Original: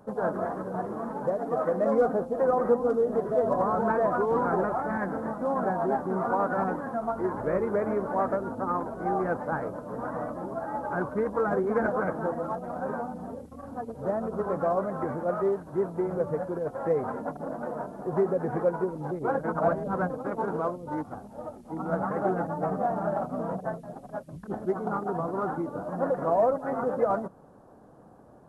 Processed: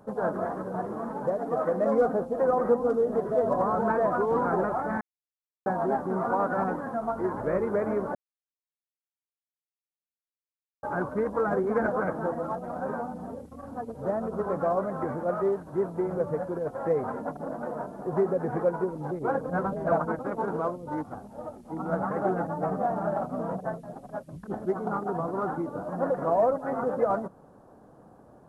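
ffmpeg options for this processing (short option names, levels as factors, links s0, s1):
-filter_complex "[0:a]asplit=7[s0][s1][s2][s3][s4][s5][s6];[s0]atrim=end=5.01,asetpts=PTS-STARTPTS,afade=t=out:st=5.006:d=0.004:c=hsin[s7];[s1]atrim=start=5.01:end=5.66,asetpts=PTS-STARTPTS,volume=0[s8];[s2]atrim=start=5.66:end=8.15,asetpts=PTS-STARTPTS,afade=t=in:d=0.004:c=hsin,afade=t=out:st=2.486:d=0.004:c=hsin[s9];[s3]atrim=start=8.15:end=10.83,asetpts=PTS-STARTPTS,volume=0[s10];[s4]atrim=start=10.83:end=19.412,asetpts=PTS-STARTPTS,afade=t=in:d=0.004:c=hsin[s11];[s5]atrim=start=19.408:end=20.192,asetpts=PTS-STARTPTS,areverse[s12];[s6]atrim=start=20.188[s13];[s7][s8][s9][s10][s11]concat=n=5:v=0:a=1[s14];[s14][s12]acrossfade=d=0.004:c1=hsin:c2=hsin[s15];[s15][s13]acrossfade=d=0.004:c1=hsin:c2=hsin"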